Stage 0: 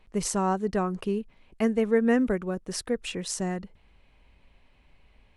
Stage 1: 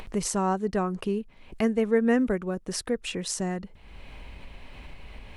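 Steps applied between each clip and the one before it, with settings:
upward compression, threshold −27 dBFS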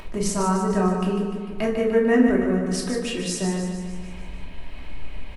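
on a send: repeating echo 149 ms, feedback 57%, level −7 dB
on the sum: rectangular room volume 610 cubic metres, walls furnished, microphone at 2.8 metres
level −1 dB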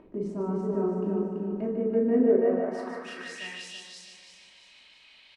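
repeating echo 333 ms, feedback 39%, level −3.5 dB
band-pass filter sweep 310 Hz → 4,000 Hz, 0:02.10–0:03.93

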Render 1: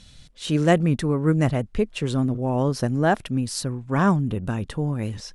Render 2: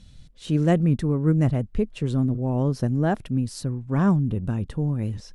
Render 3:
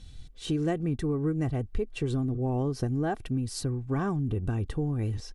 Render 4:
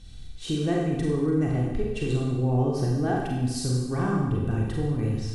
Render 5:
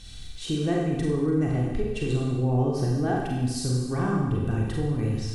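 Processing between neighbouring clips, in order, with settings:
low-shelf EQ 420 Hz +11 dB; level −8.5 dB
comb filter 2.6 ms, depth 52%; downward compressor, threshold −25 dBFS, peak gain reduction 10 dB
four-comb reverb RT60 1.1 s, combs from 32 ms, DRR −2.5 dB
one half of a high-frequency compander encoder only

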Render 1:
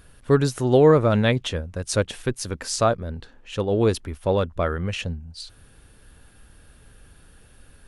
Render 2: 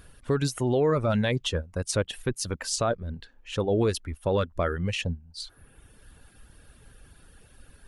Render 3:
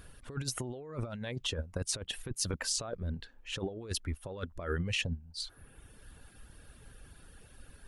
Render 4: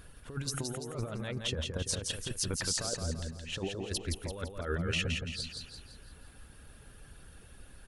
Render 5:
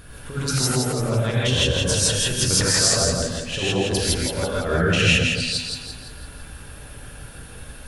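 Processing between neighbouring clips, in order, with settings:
reverb reduction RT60 0.8 s; brickwall limiter −16 dBFS, peak gain reduction 9.5 dB
compressor whose output falls as the input rises −29 dBFS, ratio −0.5; level −5.5 dB
repeating echo 169 ms, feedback 46%, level −4.5 dB
reverb whose tail is shaped and stops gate 180 ms rising, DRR −7 dB; level +8 dB

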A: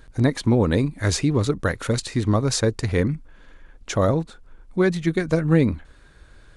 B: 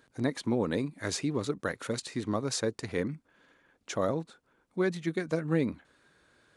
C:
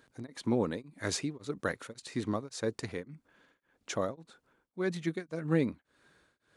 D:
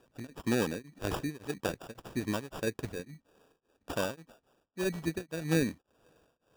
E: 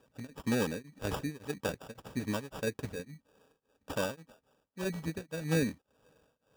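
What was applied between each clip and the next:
high-pass filter 180 Hz 12 dB per octave; level −8.5 dB
tremolo along a rectified sine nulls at 1.8 Hz
decimation without filtering 21×
notch comb filter 350 Hz

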